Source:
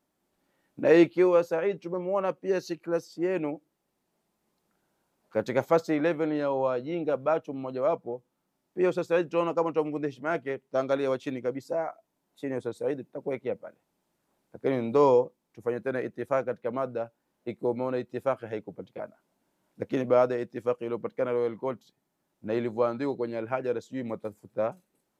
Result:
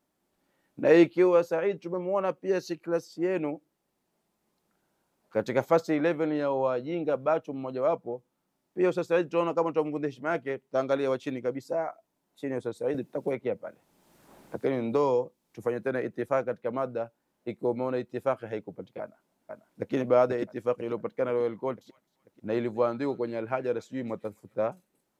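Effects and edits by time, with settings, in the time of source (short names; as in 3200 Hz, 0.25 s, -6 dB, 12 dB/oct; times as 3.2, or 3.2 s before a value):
12.94–16.28 three-band squash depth 70%
19–19.94 echo throw 0.49 s, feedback 50%, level -3.5 dB
21.51–24.67 thin delay 0.261 s, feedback 30%, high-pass 1900 Hz, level -19.5 dB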